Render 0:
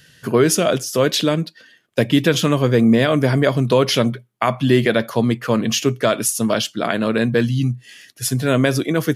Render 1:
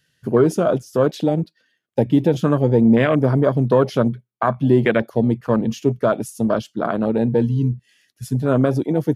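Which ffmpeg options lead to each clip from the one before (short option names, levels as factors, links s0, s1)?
-af "afwtdn=0.1"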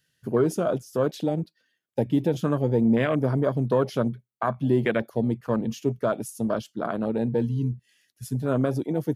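-af "highshelf=f=8300:g=7,volume=0.447"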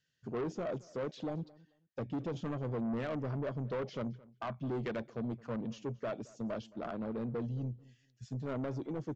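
-filter_complex "[0:a]aresample=16000,asoftclip=type=tanh:threshold=0.0708,aresample=44100,asplit=2[s0][s1];[s1]adelay=219,lowpass=f=3200:p=1,volume=0.0794,asplit=2[s2][s3];[s3]adelay=219,lowpass=f=3200:p=1,volume=0.21[s4];[s0][s2][s4]amix=inputs=3:normalize=0,acrossover=split=4800[s5][s6];[s6]acompressor=threshold=0.002:ratio=4:attack=1:release=60[s7];[s5][s7]amix=inputs=2:normalize=0,volume=0.355"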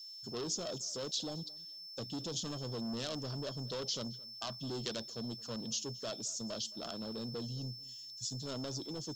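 -af "aeval=exprs='val(0)+0.000398*sin(2*PI*5300*n/s)':c=same,aexciter=amount=14.4:drive=7:freq=3400,volume=0.596"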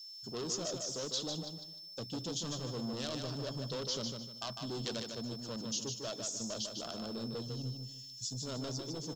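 -af "aecho=1:1:151|302|453|604:0.531|0.154|0.0446|0.0129"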